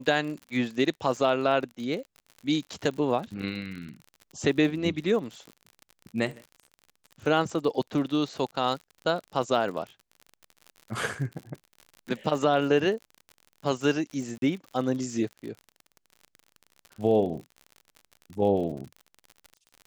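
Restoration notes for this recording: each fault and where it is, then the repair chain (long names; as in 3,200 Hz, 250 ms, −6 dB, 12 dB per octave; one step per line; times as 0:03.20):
surface crackle 55 per second −36 dBFS
0:14.38–0:14.42: drop-out 42 ms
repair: click removal
repair the gap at 0:14.38, 42 ms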